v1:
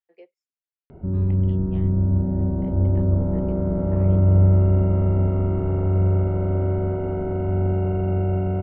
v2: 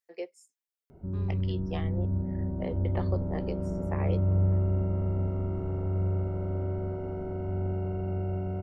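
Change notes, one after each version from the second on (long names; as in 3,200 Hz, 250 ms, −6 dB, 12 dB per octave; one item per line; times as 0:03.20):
first voice +10.5 dB
background −9.5 dB
master: remove low-pass filter 3,500 Hz 24 dB per octave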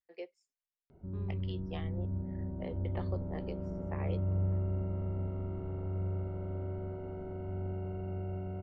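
second voice: add spectral tilt −3.5 dB per octave
master: add transistor ladder low-pass 4,900 Hz, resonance 30%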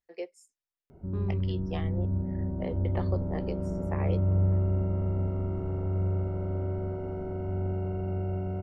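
second voice +3.5 dB
master: remove transistor ladder low-pass 4,900 Hz, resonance 30%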